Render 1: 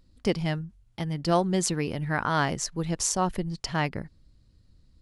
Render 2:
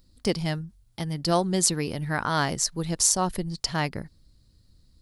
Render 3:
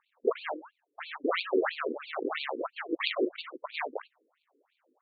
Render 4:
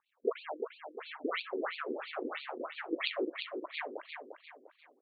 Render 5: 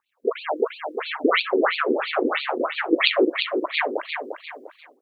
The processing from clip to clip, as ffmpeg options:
ffmpeg -i in.wav -af "aexciter=amount=2.8:drive=2.4:freq=3800" out.wav
ffmpeg -i in.wav -af "acrusher=samples=42:mix=1:aa=0.000001:lfo=1:lforange=25.2:lforate=3.9,afftfilt=real='re*between(b*sr/1024,340*pow(3300/340,0.5+0.5*sin(2*PI*3*pts/sr))/1.41,340*pow(3300/340,0.5+0.5*sin(2*PI*3*pts/sr))*1.41)':imag='im*between(b*sr/1024,340*pow(3300/340,0.5+0.5*sin(2*PI*3*pts/sr))/1.41,340*pow(3300/340,0.5+0.5*sin(2*PI*3*pts/sr))*1.41)':win_size=1024:overlap=0.75,volume=4.5dB" out.wav
ffmpeg -i in.wav -filter_complex "[0:a]acrossover=split=1100[link_01][link_02];[link_01]aeval=exprs='val(0)*(1-0.7/2+0.7/2*cos(2*PI*4.1*n/s))':channel_layout=same[link_03];[link_02]aeval=exprs='val(0)*(1-0.7/2-0.7/2*cos(2*PI*4.1*n/s))':channel_layout=same[link_04];[link_03][link_04]amix=inputs=2:normalize=0,aecho=1:1:349|698|1047|1396|1745:0.473|0.185|0.072|0.0281|0.0109,volume=-3dB" out.wav
ffmpeg -i in.wav -af "dynaudnorm=framelen=150:gausssize=5:maxgain=12dB,volume=4dB" out.wav

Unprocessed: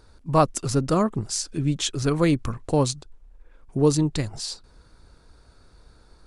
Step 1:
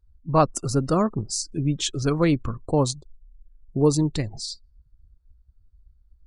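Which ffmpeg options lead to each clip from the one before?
ffmpeg -i in.wav -af "afftdn=noise_reduction=34:noise_floor=-39" out.wav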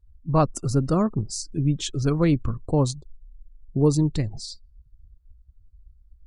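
ffmpeg -i in.wav -af "lowshelf=frequency=280:gain=8,volume=-4dB" out.wav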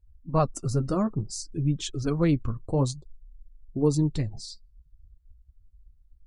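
ffmpeg -i in.wav -af "flanger=delay=0.3:depth=9.7:regen=-45:speed=0.57:shape=triangular" out.wav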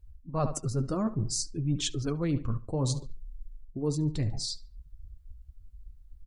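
ffmpeg -i in.wav -filter_complex "[0:a]asplit=2[link_01][link_02];[link_02]adelay=72,lowpass=frequency=3700:poles=1,volume=-18.5dB,asplit=2[link_03][link_04];[link_04]adelay=72,lowpass=frequency=3700:poles=1,volume=0.38,asplit=2[link_05][link_06];[link_06]adelay=72,lowpass=frequency=3700:poles=1,volume=0.38[link_07];[link_01][link_03][link_05][link_07]amix=inputs=4:normalize=0,areverse,acompressor=threshold=-33dB:ratio=6,areverse,volume=6.5dB" out.wav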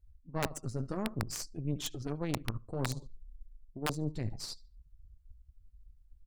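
ffmpeg -i in.wav -af "aeval=exprs='0.178*(cos(1*acos(clip(val(0)/0.178,-1,1)))-cos(1*PI/2))+0.0251*(cos(3*acos(clip(val(0)/0.178,-1,1)))-cos(3*PI/2))+0.0251*(cos(4*acos(clip(val(0)/0.178,-1,1)))-cos(4*PI/2))':channel_layout=same,aeval=exprs='(mod(7.5*val(0)+1,2)-1)/7.5':channel_layout=same,volume=-4dB" out.wav

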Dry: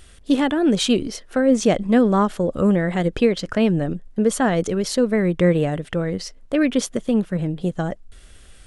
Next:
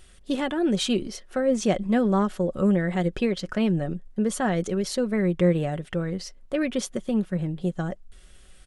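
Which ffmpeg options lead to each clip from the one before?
ffmpeg -i in.wav -af "aecho=1:1:5.4:0.39,volume=-6dB" out.wav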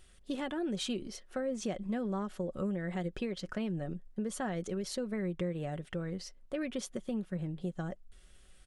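ffmpeg -i in.wav -af "acompressor=threshold=-24dB:ratio=4,volume=-8dB" out.wav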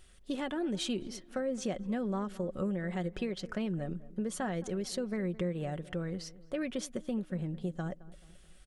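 ffmpeg -i in.wav -filter_complex "[0:a]asplit=2[link_01][link_02];[link_02]adelay=216,lowpass=frequency=1300:poles=1,volume=-18dB,asplit=2[link_03][link_04];[link_04]adelay=216,lowpass=frequency=1300:poles=1,volume=0.47,asplit=2[link_05][link_06];[link_06]adelay=216,lowpass=frequency=1300:poles=1,volume=0.47,asplit=2[link_07][link_08];[link_08]adelay=216,lowpass=frequency=1300:poles=1,volume=0.47[link_09];[link_01][link_03][link_05][link_07][link_09]amix=inputs=5:normalize=0,volume=1dB" out.wav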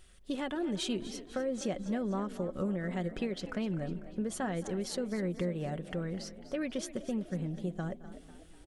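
ffmpeg -i in.wav -filter_complex "[0:a]asplit=6[link_01][link_02][link_03][link_04][link_05][link_06];[link_02]adelay=248,afreqshift=44,volume=-14.5dB[link_07];[link_03]adelay=496,afreqshift=88,volume=-20.3dB[link_08];[link_04]adelay=744,afreqshift=132,volume=-26.2dB[link_09];[link_05]adelay=992,afreqshift=176,volume=-32dB[link_10];[link_06]adelay=1240,afreqshift=220,volume=-37.9dB[link_11];[link_01][link_07][link_08][link_09][link_10][link_11]amix=inputs=6:normalize=0" out.wav

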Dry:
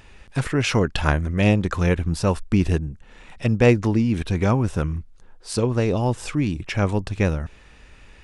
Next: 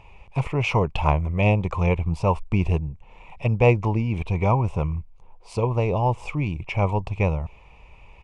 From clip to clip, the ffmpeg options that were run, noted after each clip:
ffmpeg -i in.wav -af "firequalizer=gain_entry='entry(150,0);entry(250,-10);entry(430,-2);entry(980,7);entry(1600,-22);entry(2300,3);entry(3800,-13);entry(6800,-13);entry(11000,-19)':delay=0.05:min_phase=1" out.wav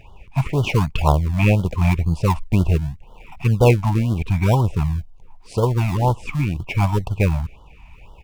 ffmpeg -i in.wav -filter_complex "[0:a]asplit=2[link_01][link_02];[link_02]acrusher=samples=40:mix=1:aa=0.000001:lfo=1:lforange=40:lforate=0.83,volume=-10dB[link_03];[link_01][link_03]amix=inputs=2:normalize=0,afftfilt=real='re*(1-between(b*sr/1024,410*pow(2100/410,0.5+0.5*sin(2*PI*2*pts/sr))/1.41,410*pow(2100/410,0.5+0.5*sin(2*PI*2*pts/sr))*1.41))':imag='im*(1-between(b*sr/1024,410*pow(2100/410,0.5+0.5*sin(2*PI*2*pts/sr))/1.41,410*pow(2100/410,0.5+0.5*sin(2*PI*2*pts/sr))*1.41))':win_size=1024:overlap=0.75,volume=2.5dB" out.wav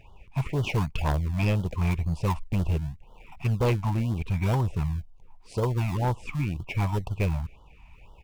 ffmpeg -i in.wav -af "asoftclip=type=hard:threshold=-12.5dB,volume=-7dB" out.wav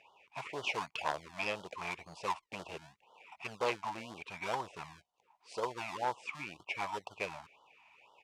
ffmpeg -i in.wav -af "highpass=630,lowpass=7400,volume=-2dB" out.wav

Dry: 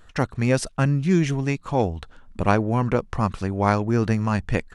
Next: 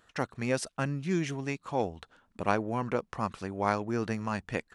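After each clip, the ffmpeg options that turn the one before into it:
ffmpeg -i in.wav -af "highpass=frequency=270:poles=1,volume=-6.5dB" out.wav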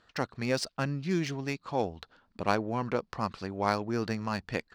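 ffmpeg -i in.wav -af "equalizer=frequency=4600:width_type=o:width=0.51:gain=10.5,adynamicsmooth=sensitivity=6:basefreq=5100" out.wav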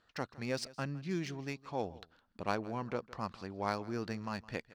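ffmpeg -i in.wav -af "aecho=1:1:162:0.1,volume=-7dB" out.wav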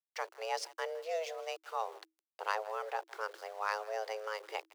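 ffmpeg -i in.wav -af "bandreject=frequency=50:width_type=h:width=6,bandreject=frequency=100:width_type=h:width=6,bandreject=frequency=150:width_type=h:width=6,bandreject=frequency=200:width_type=h:width=6,bandreject=frequency=250:width_type=h:width=6,aeval=exprs='val(0)*gte(abs(val(0)),0.00266)':channel_layout=same,afreqshift=320" out.wav

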